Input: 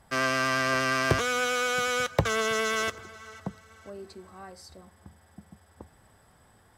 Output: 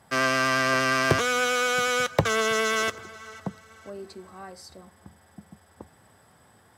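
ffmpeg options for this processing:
-af "highpass=100,volume=3dB"

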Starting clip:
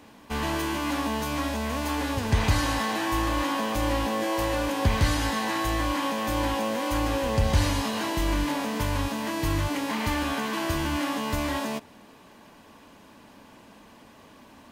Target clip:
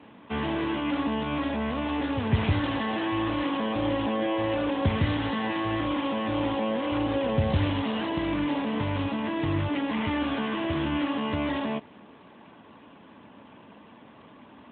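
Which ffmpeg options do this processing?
-filter_complex "[0:a]acrossover=split=690|2000[a][b][c];[b]alimiter=level_in=8.5dB:limit=-24dB:level=0:latency=1:release=50,volume=-8.5dB[d];[a][d][c]amix=inputs=3:normalize=0,volume=2dB" -ar 8000 -c:a libopencore_amrnb -b:a 12200

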